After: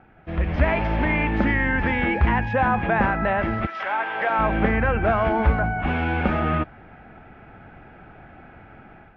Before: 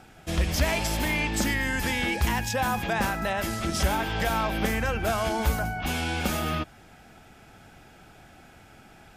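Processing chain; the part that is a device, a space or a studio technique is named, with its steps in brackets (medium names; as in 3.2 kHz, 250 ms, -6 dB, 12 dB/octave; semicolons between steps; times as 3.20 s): 3.65–4.38 s: high-pass 1.3 kHz -> 410 Hz 12 dB/octave; action camera in a waterproof case (low-pass 2.2 kHz 24 dB/octave; level rider gain up to 8 dB; trim -1.5 dB; AAC 64 kbps 16 kHz)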